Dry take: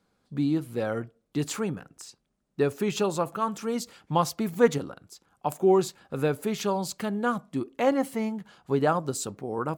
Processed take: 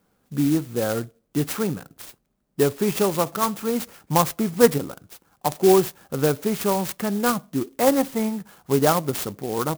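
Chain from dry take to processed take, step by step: sampling jitter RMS 0.073 ms; trim +5 dB

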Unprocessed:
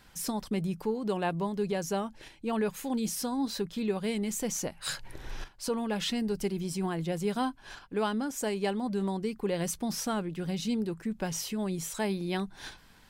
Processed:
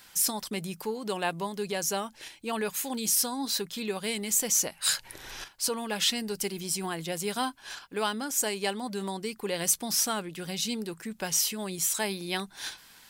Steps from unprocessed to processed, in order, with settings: tilt EQ +3 dB/octave; trim +2 dB

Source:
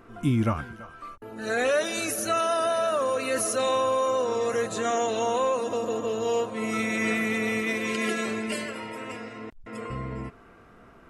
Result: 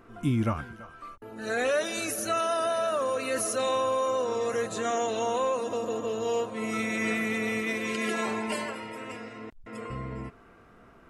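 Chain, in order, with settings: 8.13–8.75 s: peaking EQ 890 Hz +14 dB 0.58 oct; trim -2.5 dB

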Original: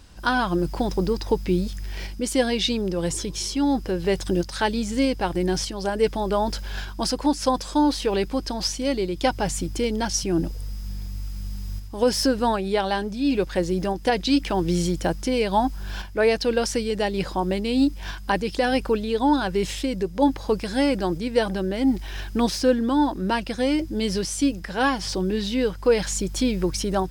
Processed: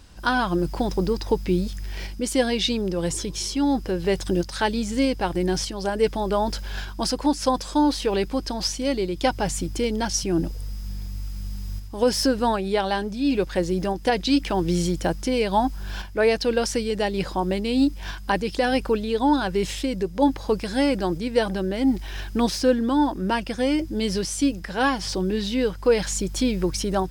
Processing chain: 22.97–23.85 s: band-stop 4 kHz, Q 9.5

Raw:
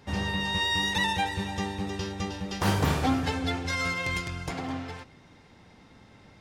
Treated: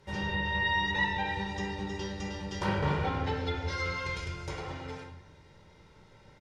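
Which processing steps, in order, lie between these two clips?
comb 2.1 ms, depth 58%; simulated room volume 320 m³, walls mixed, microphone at 1.1 m; low-pass that closes with the level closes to 2.9 kHz, closed at -19.5 dBFS; trim -7 dB

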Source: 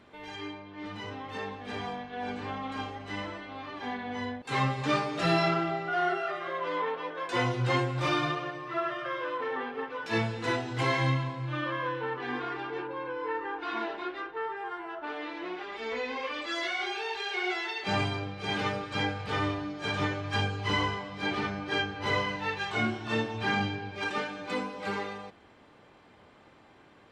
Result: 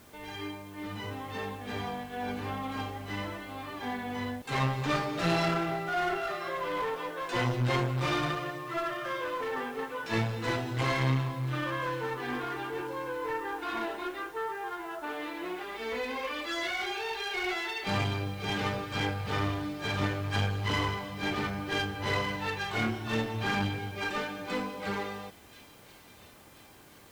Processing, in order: bass shelf 110 Hz +8.5 dB; feedback echo behind a high-pass 1033 ms, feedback 54%, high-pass 3.6 kHz, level -13.5 dB; word length cut 10-bit, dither triangular; one-sided clip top -31 dBFS

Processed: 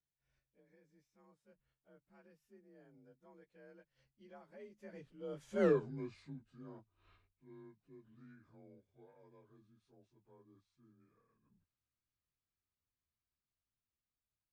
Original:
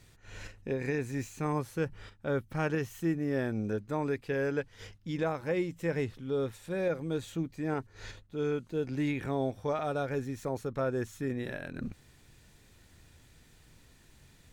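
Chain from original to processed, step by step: frequency axis rescaled in octaves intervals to 89%; Doppler pass-by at 5.65 s, 59 m/s, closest 3.8 m; trim +3.5 dB

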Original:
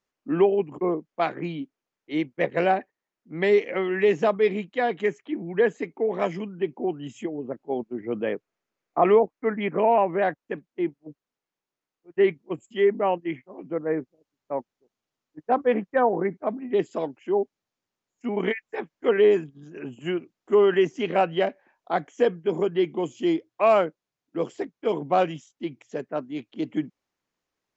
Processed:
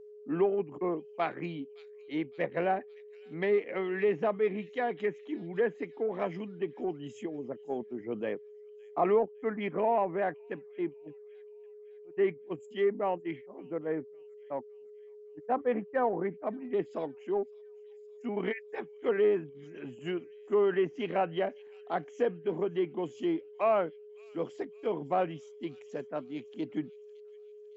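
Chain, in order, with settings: 0.81–1.46 s: treble shelf 2.2 kHz +8.5 dB; feedback echo behind a high-pass 561 ms, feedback 51%, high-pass 3.5 kHz, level -16 dB; in parallel at -11.5 dB: saturation -24 dBFS, distortion -7 dB; on the sum: whistle 420 Hz -39 dBFS; low-pass that closes with the level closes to 2.4 kHz, closed at -18 dBFS; trim -8.5 dB

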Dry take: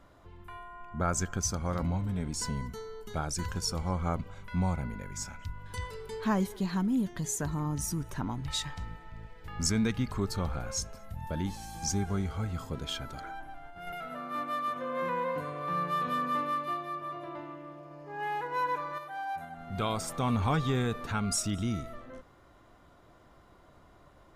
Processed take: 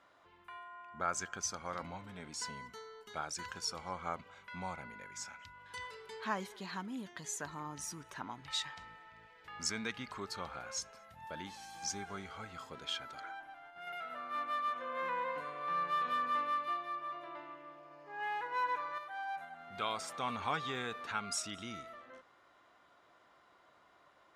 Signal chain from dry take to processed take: band-pass filter 2.2 kHz, Q 0.52; trim -1 dB

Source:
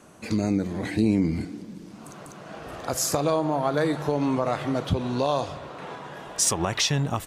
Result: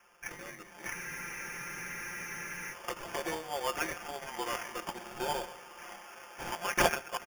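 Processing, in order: bass shelf 330 Hz -6.5 dB; comb 5.8 ms, depth 96%; mistuned SSB -160 Hz 370–3500 Hz; delay 136 ms -19.5 dB; in parallel at -3 dB: crossover distortion -31.5 dBFS; on the sum: differentiator; sample-and-hold 11×; spectral freeze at 0.95 s, 1.78 s; trim +6 dB

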